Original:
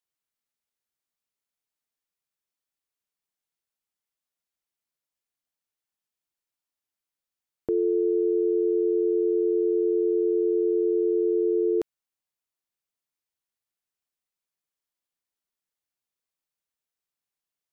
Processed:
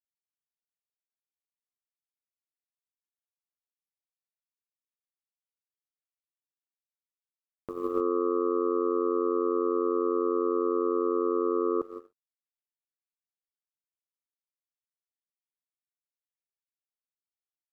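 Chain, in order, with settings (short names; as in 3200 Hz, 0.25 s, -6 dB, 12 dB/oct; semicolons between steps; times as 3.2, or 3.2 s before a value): upward compressor, threshold -36 dBFS; non-linear reverb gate 0.33 s flat, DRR 1.5 dB; power-law curve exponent 3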